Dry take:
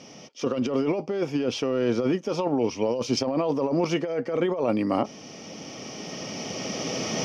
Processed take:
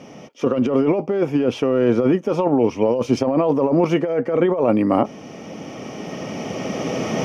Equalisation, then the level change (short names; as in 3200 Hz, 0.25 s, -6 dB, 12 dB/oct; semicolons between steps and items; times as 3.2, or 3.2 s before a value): bell 4900 Hz -14.5 dB 1.3 oct; +7.5 dB